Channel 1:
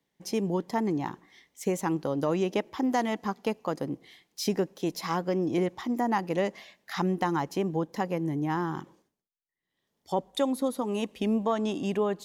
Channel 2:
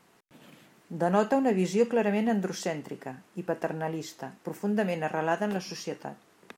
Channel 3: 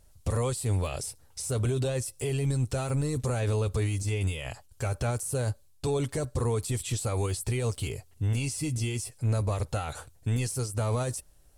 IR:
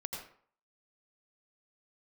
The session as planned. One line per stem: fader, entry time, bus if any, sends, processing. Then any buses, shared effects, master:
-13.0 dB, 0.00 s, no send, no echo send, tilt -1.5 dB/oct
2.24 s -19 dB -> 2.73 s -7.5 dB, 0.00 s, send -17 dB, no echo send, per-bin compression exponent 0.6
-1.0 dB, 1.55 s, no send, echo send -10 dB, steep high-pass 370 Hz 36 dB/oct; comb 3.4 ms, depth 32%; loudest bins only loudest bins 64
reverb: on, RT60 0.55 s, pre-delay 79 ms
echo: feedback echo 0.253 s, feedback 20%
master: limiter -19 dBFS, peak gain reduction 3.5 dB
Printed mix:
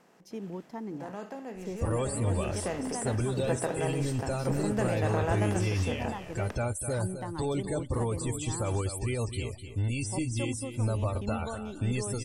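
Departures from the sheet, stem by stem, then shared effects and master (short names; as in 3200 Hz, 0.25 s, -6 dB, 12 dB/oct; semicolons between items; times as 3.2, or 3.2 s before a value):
stem 3: missing steep high-pass 370 Hz 36 dB/oct; master: missing limiter -19 dBFS, peak gain reduction 3.5 dB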